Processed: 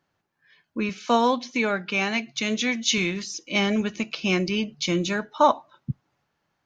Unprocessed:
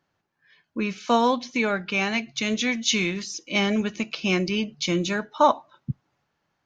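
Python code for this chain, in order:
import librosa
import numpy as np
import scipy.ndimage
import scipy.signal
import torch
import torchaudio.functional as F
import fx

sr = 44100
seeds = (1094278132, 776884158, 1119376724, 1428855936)

y = fx.highpass(x, sr, hz=140.0, slope=12, at=(0.89, 2.98))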